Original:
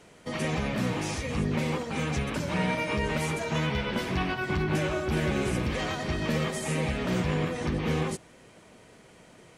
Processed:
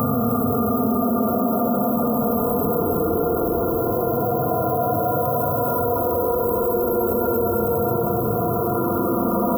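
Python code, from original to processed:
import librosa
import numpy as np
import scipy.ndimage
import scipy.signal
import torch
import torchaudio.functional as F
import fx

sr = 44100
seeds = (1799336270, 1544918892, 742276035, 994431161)

y = x + 0.34 * np.pad(x, (int(2.5 * sr / 1000.0), 0))[:len(x)]
y = fx.pitch_keep_formants(y, sr, semitones=7.0)
y = np.repeat(scipy.signal.resample_poly(y, 1, 6), 6)[:len(y)]
y = fx.paulstretch(y, sr, seeds[0], factor=45.0, window_s=0.05, from_s=3.31)
y = fx.brickwall_bandstop(y, sr, low_hz=1400.0, high_hz=11000.0)
y = fx.high_shelf(y, sr, hz=11000.0, db=4.5)
y = fx.echo_alternate(y, sr, ms=406, hz=830.0, feedback_pct=78, wet_db=-11)
y = fx.rev_gated(y, sr, seeds[1], gate_ms=350, shape='rising', drr_db=5.0)
y = fx.env_flatten(y, sr, amount_pct=70)
y = y * librosa.db_to_amplitude(7.0)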